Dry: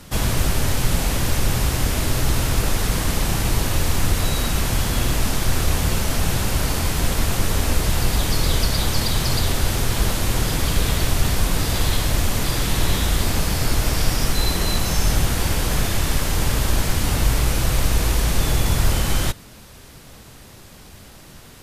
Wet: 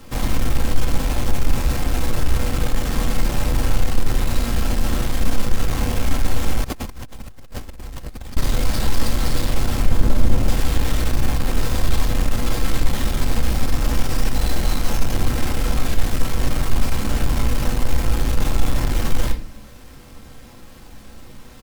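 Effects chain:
each half-wave held at its own peak
comb filter 3.8 ms, depth 39%
sine wavefolder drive 4 dB, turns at −1 dBFS
0:09.85–0:10.48: tilt shelving filter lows +5 dB, about 650 Hz
convolution reverb RT60 0.50 s, pre-delay 8 ms, DRR 3.5 dB
0:06.64–0:08.37: compressor whose output falls as the input rises −17 dBFS, ratio −1
level −15 dB

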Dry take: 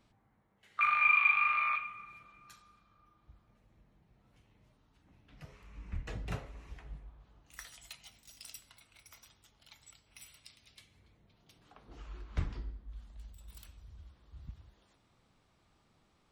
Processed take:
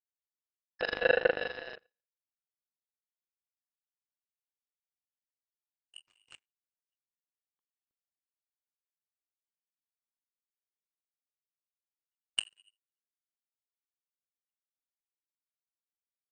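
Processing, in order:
voice inversion scrambler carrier 2,900 Hz
low-pass that shuts in the quiet parts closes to 570 Hz, open at −29 dBFS
power curve on the samples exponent 3
level +8 dB

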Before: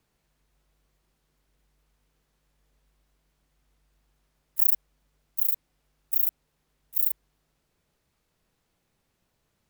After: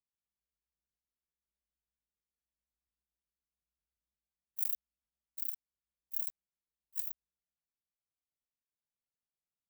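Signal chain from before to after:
pitch shifter swept by a sawtooth +6 semitones, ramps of 180 ms
power curve on the samples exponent 1.4
level −5.5 dB

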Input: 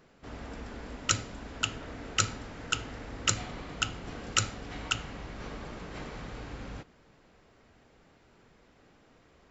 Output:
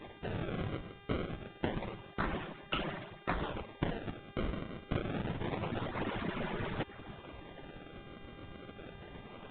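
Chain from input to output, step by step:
harmonic-percussive split with one part muted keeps percussive
reversed playback
downward compressor 10 to 1, threshold −49 dBFS, peak gain reduction 28 dB
reversed playback
sample-and-hold swept by an LFO 29×, swing 160% 0.27 Hz
hum with harmonics 400 Hz, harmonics 15, −73 dBFS −2 dB per octave
level +16 dB
A-law companding 64 kbit/s 8,000 Hz

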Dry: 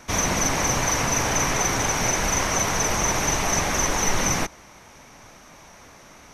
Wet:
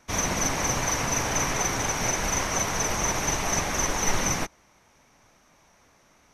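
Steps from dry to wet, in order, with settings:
expander for the loud parts 1.5 to 1, over −40 dBFS
level −1 dB

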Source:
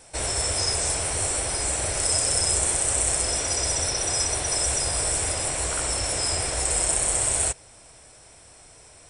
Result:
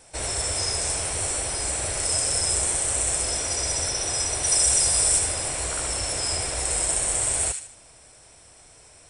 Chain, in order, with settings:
0:04.43–0:05.19: high-shelf EQ 4,700 Hz +8.5 dB
on a send: delay with a high-pass on its return 76 ms, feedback 37%, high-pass 1,800 Hz, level −5.5 dB
on the sum: level −2 dB

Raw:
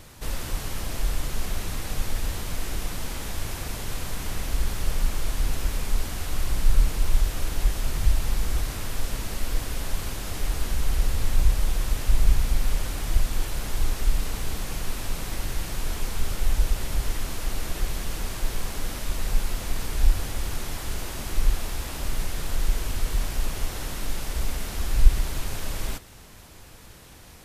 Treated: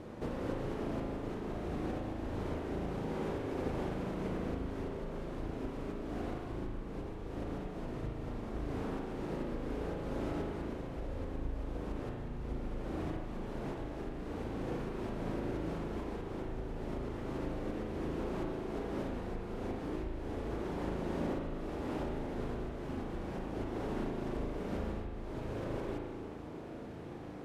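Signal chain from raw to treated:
downward compressor 4 to 1, threshold −31 dBFS, peak gain reduction 20.5 dB
resonant band-pass 340 Hz, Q 1.2
spring reverb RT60 1.5 s, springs 37 ms, chirp 30 ms, DRR 0 dB
level +8.5 dB

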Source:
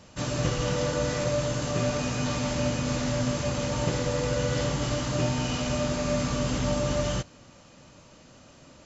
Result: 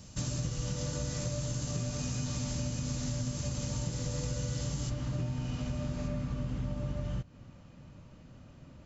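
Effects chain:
bass and treble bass +13 dB, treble +14 dB, from 0:04.89 treble −2 dB, from 0:06.07 treble −9 dB
downward compressor 6 to 1, threshold −24 dBFS, peak gain reduction 12.5 dB
level −7.5 dB

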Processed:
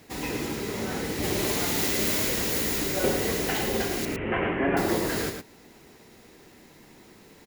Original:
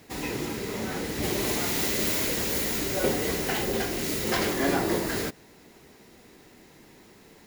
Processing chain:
0:04.05–0:04.77: Butterworth low-pass 2,900 Hz 72 dB per octave
on a send: single-tap delay 109 ms −6.5 dB

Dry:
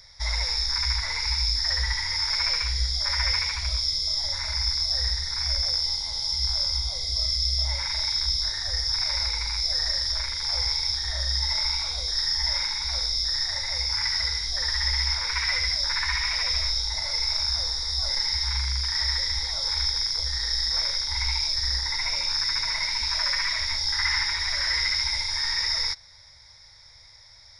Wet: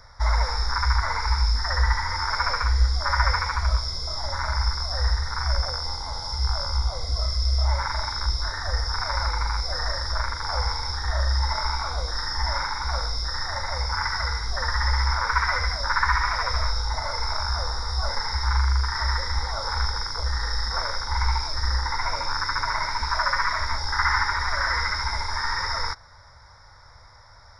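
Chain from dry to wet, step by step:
high shelf with overshoot 1,900 Hz −12.5 dB, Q 3
level +8 dB

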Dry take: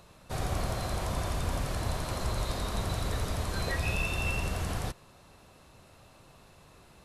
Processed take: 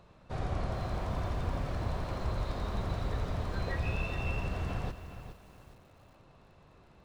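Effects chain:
head-to-tape spacing loss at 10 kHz 21 dB
feedback echo at a low word length 416 ms, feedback 35%, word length 9 bits, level −10.5 dB
level −1.5 dB

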